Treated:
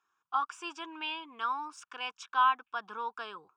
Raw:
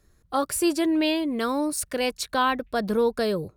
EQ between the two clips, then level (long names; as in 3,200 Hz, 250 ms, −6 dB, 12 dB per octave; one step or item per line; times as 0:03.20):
high-pass with resonance 950 Hz, resonance Q 1.7
high-frequency loss of the air 160 metres
phaser with its sweep stopped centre 2,900 Hz, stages 8
−3.5 dB